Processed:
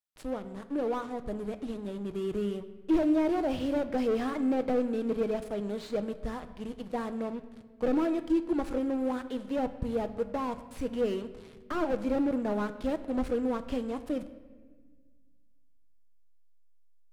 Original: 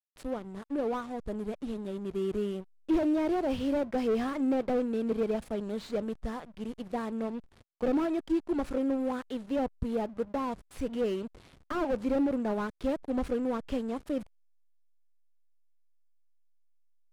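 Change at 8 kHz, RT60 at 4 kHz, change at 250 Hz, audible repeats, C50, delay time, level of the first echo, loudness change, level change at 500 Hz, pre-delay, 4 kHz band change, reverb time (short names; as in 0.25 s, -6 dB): n/a, 1.1 s, +0.5 dB, none, 13.0 dB, none, none, +0.5 dB, +0.5 dB, 6 ms, +0.5 dB, 1.5 s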